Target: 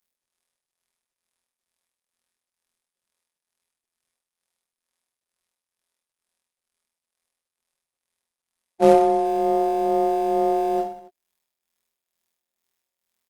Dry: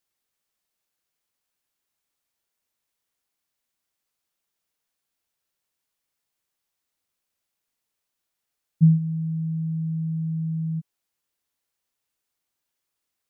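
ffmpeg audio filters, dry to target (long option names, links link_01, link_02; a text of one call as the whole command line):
ffmpeg -i in.wav -filter_complex "[0:a]bandreject=frequency=127:width_type=h:width=4,bandreject=frequency=254:width_type=h:width=4,bandreject=frequency=381:width_type=h:width=4,bandreject=frequency=508:width_type=h:width=4,bandreject=frequency=635:width_type=h:width=4,bandreject=frequency=762:width_type=h:width=4,bandreject=frequency=889:width_type=h:width=4,afftfilt=real='hypot(re,im)*cos(PI*b)':imag='0':win_size=2048:overlap=0.75,aecho=1:1:6.2:0.37,acrossover=split=150[link_01][link_02];[link_01]acrusher=bits=2:mode=log:mix=0:aa=0.000001[link_03];[link_02]tremolo=f=2.2:d=0.66[link_04];[link_03][link_04]amix=inputs=2:normalize=0,aeval=exprs='clip(val(0),-1,0.0188)':channel_layout=same,aeval=exprs='val(0)*sin(2*PI*540*n/s)':channel_layout=same,asplit=2[link_05][link_06];[link_06]aecho=0:1:30|69|119.7|185.6|271.3:0.631|0.398|0.251|0.158|0.1[link_07];[link_05][link_07]amix=inputs=2:normalize=0,volume=8dB" -ar 48000 -c:a libopus -b:a 32k out.opus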